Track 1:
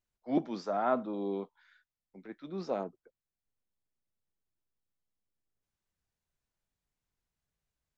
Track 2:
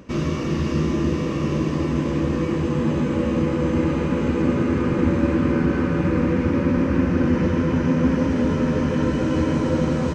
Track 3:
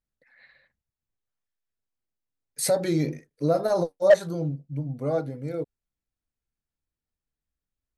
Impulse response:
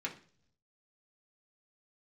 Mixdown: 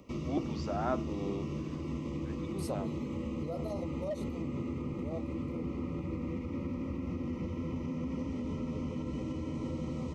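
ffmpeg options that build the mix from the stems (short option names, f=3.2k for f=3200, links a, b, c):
-filter_complex "[0:a]crystalizer=i=1.5:c=0,volume=-4.5dB,asplit=2[a][b];[1:a]equalizer=f=170:t=o:w=0.31:g=-4,acrossover=split=330|1000[c][d][e];[c]acompressor=threshold=-23dB:ratio=4[f];[d]acompressor=threshold=-38dB:ratio=4[g];[e]acompressor=threshold=-42dB:ratio=4[h];[f][g][h]amix=inputs=3:normalize=0,volume=-10dB[i];[2:a]volume=-13.5dB[j];[b]apad=whole_len=351509[k];[j][k]sidechaincompress=threshold=-45dB:ratio=8:attack=16:release=511[l];[i][l]amix=inputs=2:normalize=0,asuperstop=centerf=1600:order=20:qfactor=3.1,alimiter=level_in=4dB:limit=-24dB:level=0:latency=1:release=78,volume=-4dB,volume=0dB[m];[a][m]amix=inputs=2:normalize=0"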